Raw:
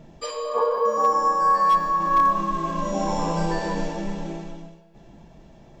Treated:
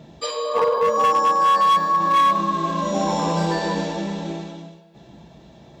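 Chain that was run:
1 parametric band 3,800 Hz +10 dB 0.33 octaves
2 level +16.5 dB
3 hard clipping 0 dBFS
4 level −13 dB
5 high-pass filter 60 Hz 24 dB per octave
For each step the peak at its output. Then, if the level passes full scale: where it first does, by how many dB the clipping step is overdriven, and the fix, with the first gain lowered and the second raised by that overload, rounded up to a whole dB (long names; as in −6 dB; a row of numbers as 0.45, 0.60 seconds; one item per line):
−11.0, +5.5, 0.0, −13.0, −10.5 dBFS
step 2, 5.5 dB
step 2 +10.5 dB, step 4 −7 dB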